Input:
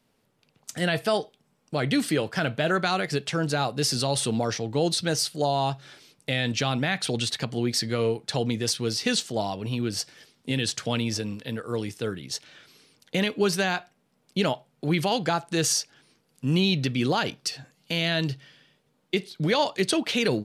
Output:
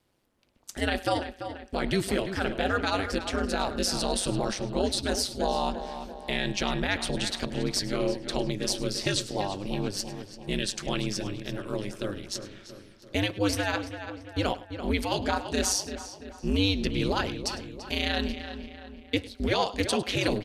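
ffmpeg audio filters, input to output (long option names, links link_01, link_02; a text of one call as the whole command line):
ffmpeg -i in.wav -filter_complex "[0:a]asplit=2[link_01][link_02];[link_02]aecho=0:1:103:0.126[link_03];[link_01][link_03]amix=inputs=2:normalize=0,aeval=exprs='val(0)*sin(2*PI*98*n/s)':channel_layout=same,asplit=2[link_04][link_05];[link_05]adelay=339,lowpass=frequency=3000:poles=1,volume=-9.5dB,asplit=2[link_06][link_07];[link_07]adelay=339,lowpass=frequency=3000:poles=1,volume=0.53,asplit=2[link_08][link_09];[link_09]adelay=339,lowpass=frequency=3000:poles=1,volume=0.53,asplit=2[link_10][link_11];[link_11]adelay=339,lowpass=frequency=3000:poles=1,volume=0.53,asplit=2[link_12][link_13];[link_13]adelay=339,lowpass=frequency=3000:poles=1,volume=0.53,asplit=2[link_14][link_15];[link_15]adelay=339,lowpass=frequency=3000:poles=1,volume=0.53[link_16];[link_06][link_08][link_10][link_12][link_14][link_16]amix=inputs=6:normalize=0[link_17];[link_04][link_17]amix=inputs=2:normalize=0" out.wav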